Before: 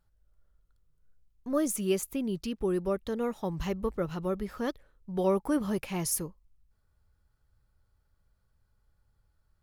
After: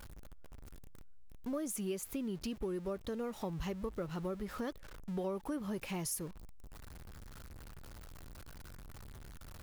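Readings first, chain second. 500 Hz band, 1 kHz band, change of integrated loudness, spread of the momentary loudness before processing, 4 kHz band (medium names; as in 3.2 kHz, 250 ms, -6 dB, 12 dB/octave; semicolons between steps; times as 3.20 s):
-9.0 dB, -8.0 dB, -8.5 dB, 7 LU, -6.0 dB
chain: jump at every zero crossing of -43 dBFS; compression 4:1, threshold -35 dBFS, peak gain reduction 12 dB; trim -1.5 dB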